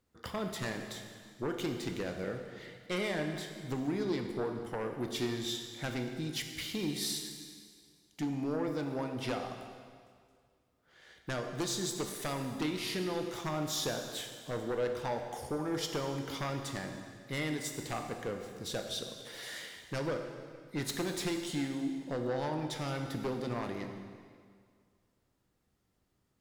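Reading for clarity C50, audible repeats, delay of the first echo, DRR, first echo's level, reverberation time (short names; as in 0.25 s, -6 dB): 5.5 dB, none, none, 4.0 dB, none, 2.0 s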